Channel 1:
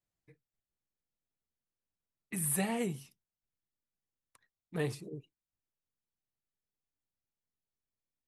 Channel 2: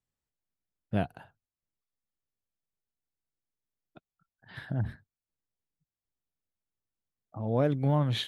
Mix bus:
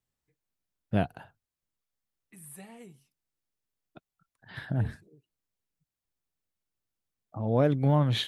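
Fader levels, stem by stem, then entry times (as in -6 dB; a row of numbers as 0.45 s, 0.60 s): -15.0 dB, +2.5 dB; 0.00 s, 0.00 s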